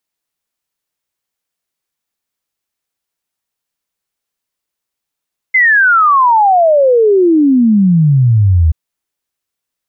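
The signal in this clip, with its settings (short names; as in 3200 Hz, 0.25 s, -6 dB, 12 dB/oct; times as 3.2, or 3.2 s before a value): log sweep 2100 Hz -> 76 Hz 3.18 s -5.5 dBFS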